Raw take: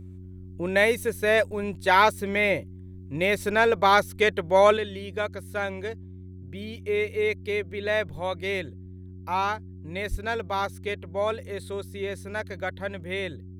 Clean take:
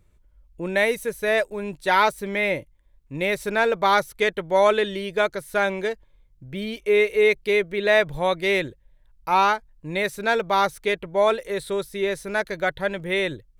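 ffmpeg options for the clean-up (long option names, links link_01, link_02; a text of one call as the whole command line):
ffmpeg -i in.wav -filter_complex "[0:a]bandreject=frequency=92.1:width_type=h:width=4,bandreject=frequency=184.2:width_type=h:width=4,bandreject=frequency=276.3:width_type=h:width=4,bandreject=frequency=368.4:width_type=h:width=4,asplit=3[link_01][link_02][link_03];[link_01]afade=type=out:start_time=10.1:duration=0.02[link_04];[link_02]highpass=frequency=140:width=0.5412,highpass=frequency=140:width=1.3066,afade=type=in:start_time=10.1:duration=0.02,afade=type=out:start_time=10.22:duration=0.02[link_05];[link_03]afade=type=in:start_time=10.22:duration=0.02[link_06];[link_04][link_05][link_06]amix=inputs=3:normalize=0,asetnsamples=nb_out_samples=441:pad=0,asendcmd='4.77 volume volume 7.5dB',volume=0dB" out.wav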